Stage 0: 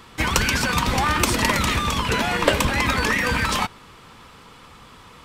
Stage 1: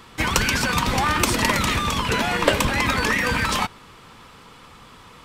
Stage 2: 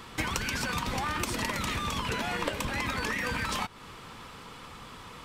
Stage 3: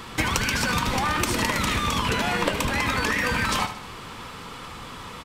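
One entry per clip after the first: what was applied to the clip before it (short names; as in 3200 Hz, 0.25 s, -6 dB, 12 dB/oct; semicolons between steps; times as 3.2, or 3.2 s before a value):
bell 68 Hz -4.5 dB 0.31 oct
compressor 6:1, threshold -29 dBFS, peak gain reduction 16.5 dB
feedback echo 75 ms, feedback 50%, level -10.5 dB; gain +7 dB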